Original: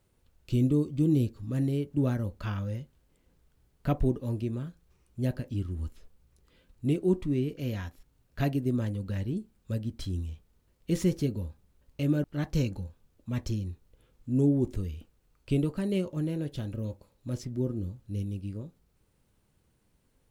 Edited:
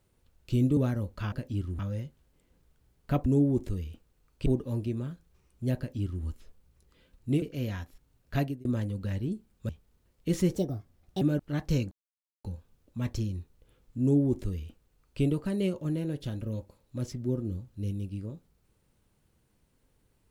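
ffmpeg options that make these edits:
-filter_complex "[0:a]asplit=12[a][b][c][d][e][f][g][h][i][j][k][l];[a]atrim=end=0.772[m];[b]atrim=start=1.998:end=2.552[n];[c]atrim=start=5.328:end=5.802[o];[d]atrim=start=2.548:end=4.022[p];[e]atrim=start=14.328:end=15.532[q];[f]atrim=start=4.018:end=6.982[r];[g]atrim=start=7.468:end=8.7,asetpts=PTS-STARTPTS,afade=t=out:st=0.982:d=0.25[s];[h]atrim=start=8.7:end=9.742,asetpts=PTS-STARTPTS,afade=t=in:d=0.004:c=hsin[t];[i]atrim=start=10.308:end=11.174[u];[j]atrim=start=11.17:end=12.06,asetpts=PTS-STARTPTS,asetrate=59094,aresample=44100,atrim=end_sample=29290,asetpts=PTS-STARTPTS[v];[k]atrim=start=12.056:end=12.76,asetpts=PTS-STARTPTS,afade=t=out:st=0.7:d=0.004:c=hsin,apad=pad_dur=0.53[w];[l]atrim=start=12.76,asetpts=PTS-STARTPTS,afade=t=in:d=0.004:c=hsin[x];[m][n]acrossfade=d=0.004:c1=hsin:c2=hsin[y];[y][o]acrossfade=d=0.004:c1=hsin:c2=hsin[z];[z][p]acrossfade=d=0.004:c1=hsin:c2=hsin[aa];[aa][q]acrossfade=d=0.004:c1=hsin:c2=hsin[ab];[ab][r]acrossfade=d=0.004:c1=hsin:c2=hsin[ac];[s][t]concat=n=2:v=0:a=1[ad];[ac][ad]acrossfade=d=0.004:c1=hsin:c2=hsin[ae];[ae][u]acrossfade=d=0.004:c1=hsin:c2=hsin[af];[af][v]acrossfade=d=0.004:c1=hsin:c2=hsin[ag];[w][x]concat=n=2:v=0:a=1[ah];[ag][ah]acrossfade=d=0.004:c1=hsin:c2=hsin"

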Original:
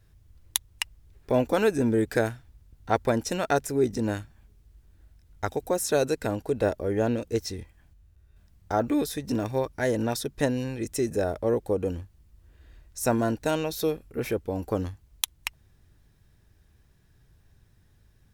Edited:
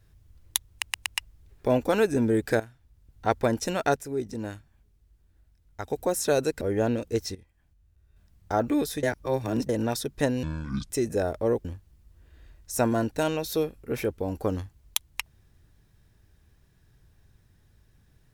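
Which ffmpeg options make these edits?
-filter_complex "[0:a]asplit=14[a][b][c][d][e][f][g][h][i][j][k][l][m][n];[a]atrim=end=0.822[o];[b]atrim=start=0.698:end=0.822[p];[c]atrim=start=0.698:end=0.822[q];[d]atrim=start=0.698:end=2.24,asetpts=PTS-STARTPTS,afade=t=out:st=1.538:d=0.004:c=hsin:silence=0.16788[r];[e]atrim=start=2.24:end=3.602,asetpts=PTS-STARTPTS,afade=t=in:d=0.73:silence=0.16788[s];[f]atrim=start=3.598:end=5.542,asetpts=PTS-STARTPTS,volume=-6.5dB[t];[g]atrim=start=5.538:end=6.252[u];[h]atrim=start=6.808:end=7.55,asetpts=PTS-STARTPTS,afade=t=out:st=0.738:d=0.004:c=hsin:silence=0.16788[v];[i]atrim=start=7.55:end=9.232,asetpts=PTS-STARTPTS,afade=t=in:d=1.18:silence=0.16788[w];[j]atrim=start=9.228:end=9.892,asetpts=PTS-STARTPTS,areverse[x];[k]atrim=start=9.888:end=10.634[y];[l]atrim=start=10.63:end=10.91,asetpts=PTS-STARTPTS,asetrate=26460,aresample=44100[z];[m]atrim=start=10.906:end=11.662[aa];[n]atrim=start=11.918[ab];[o][p]acrossfade=d=0.004:c1=hsin:c2=hsin[ac];[ac][q]acrossfade=d=0.004:c1=hsin:c2=hsin[ad];[r][s]concat=n=2:v=0:a=1[ae];[ad][ae]acrossfade=d=0.004:c1=hsin:c2=hsin[af];[af][t]acrossfade=d=0.004:c1=hsin:c2=hsin[ag];[ag][u]acrossfade=d=0.004:c1=hsin:c2=hsin[ah];[v][w]concat=n=2:v=0:a=1[ai];[ah][ai]acrossfade=d=0.004:c1=hsin:c2=hsin[aj];[aj][x]acrossfade=d=0.004:c1=hsin:c2=hsin[ak];[ak][y]acrossfade=d=0.004:c1=hsin:c2=hsin[al];[al][z]acrossfade=d=0.004:c1=hsin:c2=hsin[am];[am][aa]acrossfade=d=0.004:c1=hsin:c2=hsin[an];[an][ab]acrossfade=d=0.004:c1=hsin:c2=hsin"

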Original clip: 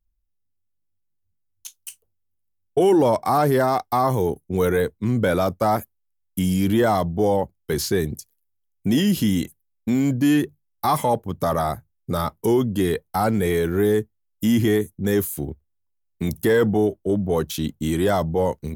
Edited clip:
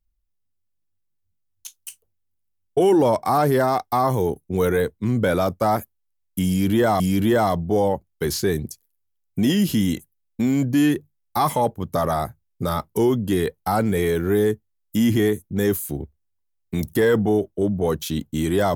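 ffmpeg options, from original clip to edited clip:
-filter_complex "[0:a]asplit=2[a][b];[a]atrim=end=7.002[c];[b]atrim=start=6.478[d];[c][d]acrossfade=d=0.004:c1=hsin:c2=hsin"

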